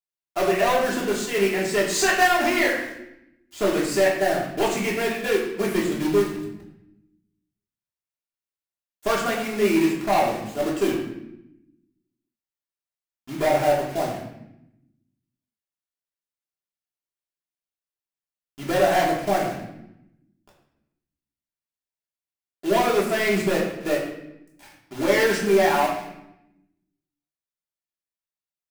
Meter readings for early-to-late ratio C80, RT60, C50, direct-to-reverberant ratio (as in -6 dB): 6.5 dB, 0.85 s, 4.5 dB, -5.0 dB